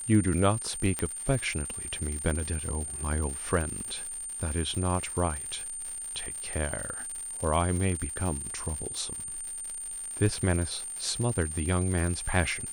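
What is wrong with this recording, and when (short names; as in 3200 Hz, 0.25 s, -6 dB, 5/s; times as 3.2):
crackle 180/s -34 dBFS
tone 9000 Hz -35 dBFS
0.99 pop -15 dBFS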